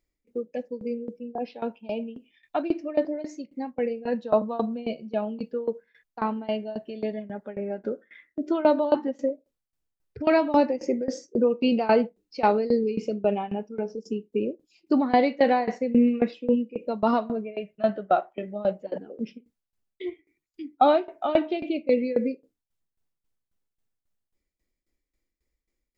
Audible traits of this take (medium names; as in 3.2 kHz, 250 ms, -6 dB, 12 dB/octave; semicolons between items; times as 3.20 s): tremolo saw down 3.7 Hz, depth 90%